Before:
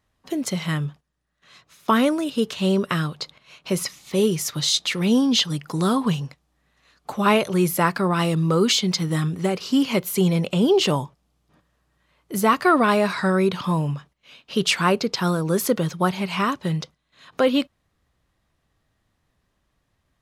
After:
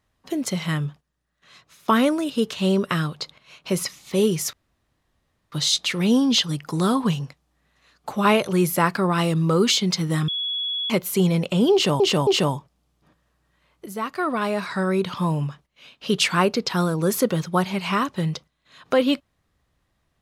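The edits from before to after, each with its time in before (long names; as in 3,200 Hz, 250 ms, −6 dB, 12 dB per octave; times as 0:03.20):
0:04.53: splice in room tone 0.99 s
0:09.29–0:09.91: beep over 3,370 Hz −23.5 dBFS
0:10.74–0:11.01: repeat, 3 plays
0:12.33–0:13.91: fade in, from −13 dB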